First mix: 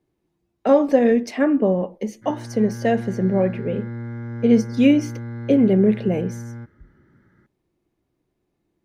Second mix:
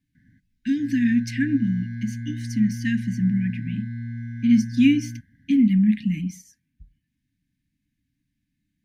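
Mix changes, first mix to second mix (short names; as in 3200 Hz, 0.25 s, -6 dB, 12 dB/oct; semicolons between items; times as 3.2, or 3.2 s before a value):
background: entry -1.45 s; master: add brick-wall FIR band-stop 300–1500 Hz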